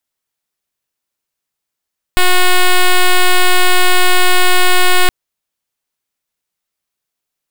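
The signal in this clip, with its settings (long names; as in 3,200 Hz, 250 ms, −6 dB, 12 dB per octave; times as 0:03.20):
pulse wave 364 Hz, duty 6% −7.5 dBFS 2.92 s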